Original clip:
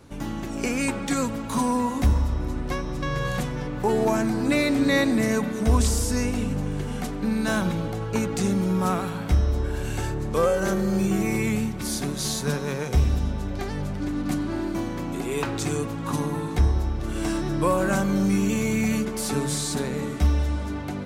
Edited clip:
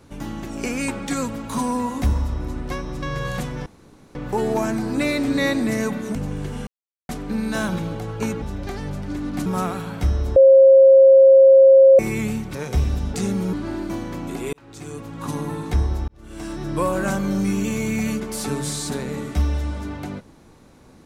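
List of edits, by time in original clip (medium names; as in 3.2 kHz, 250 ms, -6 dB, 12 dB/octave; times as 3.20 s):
3.66 s: insert room tone 0.49 s
5.66–6.50 s: delete
7.02 s: insert silence 0.42 s
8.35–8.74 s: swap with 13.34–14.38 s
9.64–11.27 s: bleep 537 Hz -6.5 dBFS
11.83–12.75 s: delete
15.38–16.30 s: fade in
16.93–17.66 s: fade in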